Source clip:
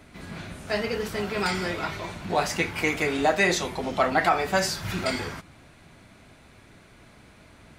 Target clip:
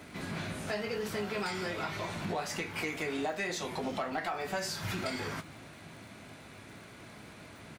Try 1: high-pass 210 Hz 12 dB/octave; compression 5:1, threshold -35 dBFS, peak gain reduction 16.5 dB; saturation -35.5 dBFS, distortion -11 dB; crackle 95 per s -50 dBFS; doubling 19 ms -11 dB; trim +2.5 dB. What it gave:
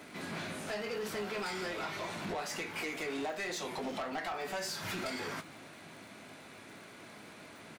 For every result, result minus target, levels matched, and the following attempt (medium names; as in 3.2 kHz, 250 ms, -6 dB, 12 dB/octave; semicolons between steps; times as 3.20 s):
saturation: distortion +9 dB; 125 Hz band -5.0 dB
high-pass 210 Hz 12 dB/octave; compression 5:1, threshold -35 dBFS, peak gain reduction 16.5 dB; saturation -27.5 dBFS, distortion -20 dB; crackle 95 per s -50 dBFS; doubling 19 ms -11 dB; trim +2.5 dB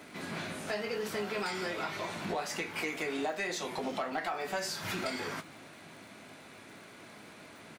125 Hz band -5.5 dB
high-pass 97 Hz 12 dB/octave; compression 5:1, threshold -35 dBFS, peak gain reduction 16.5 dB; saturation -27.5 dBFS, distortion -20 dB; crackle 95 per s -50 dBFS; doubling 19 ms -11 dB; trim +2.5 dB